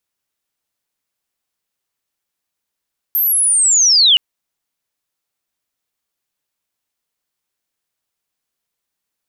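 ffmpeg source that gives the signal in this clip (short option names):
-f lavfi -i "aevalsrc='pow(10,(-12.5+6*t/1.02)/20)*sin(2*PI*(13000*t-10200*t*t/(2*1.02)))':d=1.02:s=44100"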